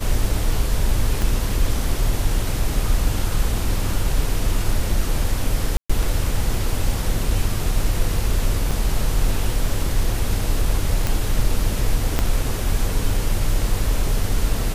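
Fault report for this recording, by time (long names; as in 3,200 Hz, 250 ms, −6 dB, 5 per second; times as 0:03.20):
0:01.22: click
0:05.77–0:05.89: drop-out 125 ms
0:08.71: drop-out 2.6 ms
0:11.07: click
0:12.19: click −5 dBFS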